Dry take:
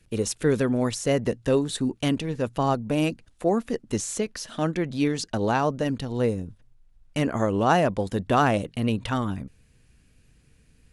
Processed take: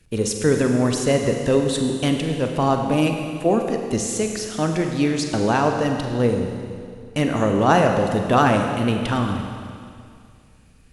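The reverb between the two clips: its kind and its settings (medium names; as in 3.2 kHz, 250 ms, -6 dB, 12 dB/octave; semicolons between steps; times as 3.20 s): Schroeder reverb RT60 2.3 s, combs from 33 ms, DRR 3.5 dB; trim +3.5 dB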